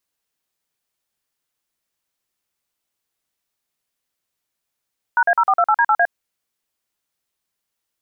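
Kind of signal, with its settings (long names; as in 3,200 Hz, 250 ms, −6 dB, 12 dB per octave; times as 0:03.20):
touch tones "#A0428D8A", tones 59 ms, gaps 44 ms, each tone −14.5 dBFS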